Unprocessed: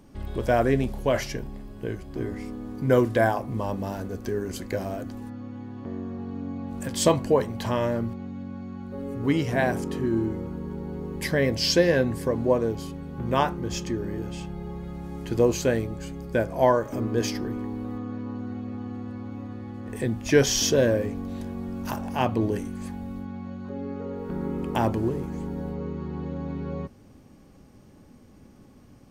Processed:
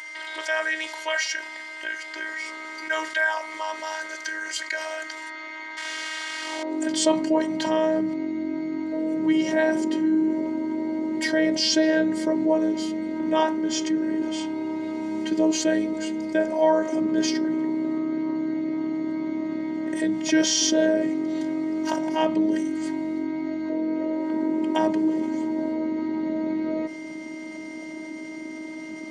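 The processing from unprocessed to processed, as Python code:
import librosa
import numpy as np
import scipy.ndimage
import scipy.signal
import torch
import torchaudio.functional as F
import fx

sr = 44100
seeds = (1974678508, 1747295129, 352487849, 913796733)

y = fx.delta_mod(x, sr, bps=64000, step_db=-35.0, at=(5.77, 6.63))
y = scipy.signal.sosfilt(scipy.signal.butter(4, 7900.0, 'lowpass', fs=sr, output='sos'), y)
y = fx.low_shelf(y, sr, hz=98.0, db=-9.0)
y = fx.notch_comb(y, sr, f0_hz=1300.0)
y = fx.robotise(y, sr, hz=314.0)
y = y + 10.0 ** (-62.0 / 20.0) * np.sin(2.0 * np.pi * 2100.0 * np.arange(len(y)) / sr)
y = fx.filter_sweep_highpass(y, sr, from_hz=1500.0, to_hz=180.0, start_s=6.39, end_s=6.93, q=1.6)
y = fx.env_flatten(y, sr, amount_pct=50)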